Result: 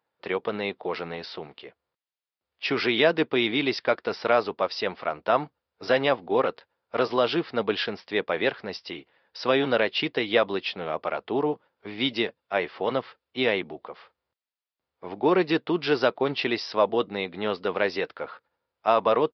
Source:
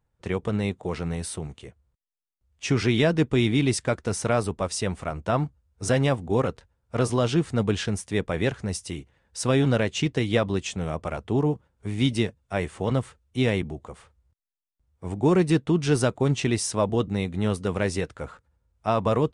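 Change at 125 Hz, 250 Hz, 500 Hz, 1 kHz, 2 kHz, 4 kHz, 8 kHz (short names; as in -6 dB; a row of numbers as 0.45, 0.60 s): -16.0 dB, -4.5 dB, +1.5 dB, +4.0 dB, +4.0 dB, +3.5 dB, under -20 dB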